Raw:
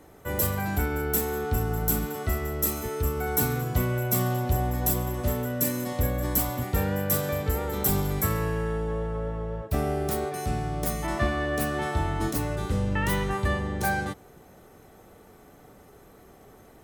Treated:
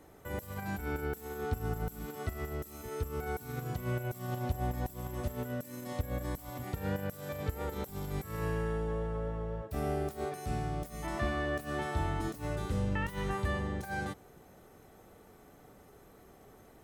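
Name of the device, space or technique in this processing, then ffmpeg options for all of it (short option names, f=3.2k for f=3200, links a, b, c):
de-esser from a sidechain: -filter_complex "[0:a]asplit=2[a][b];[b]highpass=4.9k,apad=whole_len=742377[c];[a][c]sidechaincompress=threshold=-44dB:ratio=8:attack=1.2:release=55,volume=-5dB"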